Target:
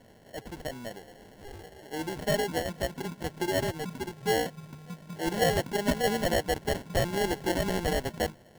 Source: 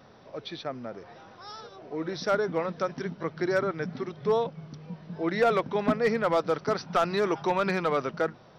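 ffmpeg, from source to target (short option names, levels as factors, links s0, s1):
-af "acrusher=samples=36:mix=1:aa=0.000001,volume=0.794"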